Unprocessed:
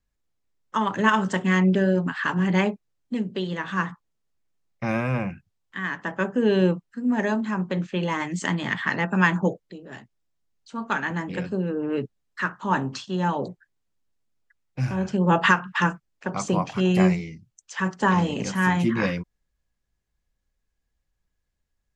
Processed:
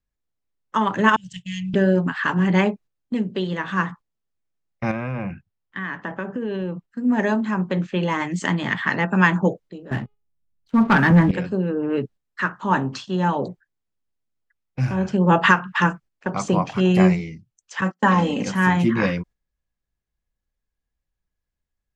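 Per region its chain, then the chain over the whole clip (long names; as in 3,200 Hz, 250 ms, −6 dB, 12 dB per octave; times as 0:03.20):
0:01.16–0:01.74: elliptic band-stop filter 140–2,800 Hz + downward expander −35 dBFS
0:04.91–0:06.88: low-pass filter 7,600 Hz + bass and treble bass +1 dB, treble −6 dB + downward compressor, threshold −27 dBFS
0:09.91–0:11.31: bass and treble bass +12 dB, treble −12 dB + hum removal 415.7 Hz, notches 12 + leveller curve on the samples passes 2
0:17.81–0:18.47: noise gate −31 dBFS, range −32 dB + high-pass filter 110 Hz + comb filter 3.8 ms, depth 51%
whole clip: noise gate −44 dBFS, range −8 dB; high-shelf EQ 5,100 Hz −6 dB; level +3.5 dB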